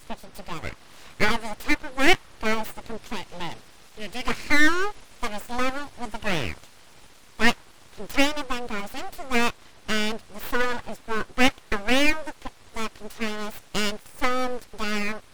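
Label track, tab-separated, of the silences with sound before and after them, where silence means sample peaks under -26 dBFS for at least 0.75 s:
6.530000	7.390000	silence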